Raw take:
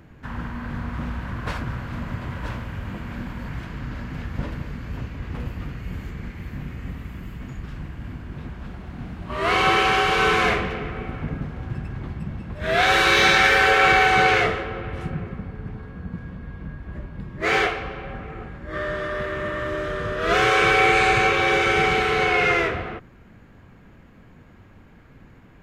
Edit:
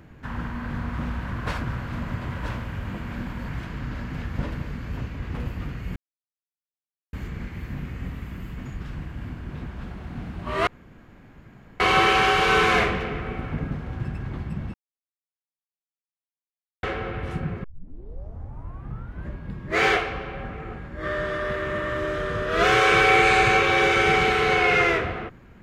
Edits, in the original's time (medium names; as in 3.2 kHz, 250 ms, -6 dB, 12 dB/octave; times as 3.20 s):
5.96 s: insert silence 1.17 s
9.50 s: insert room tone 1.13 s
12.44–14.53 s: mute
15.34 s: tape start 1.66 s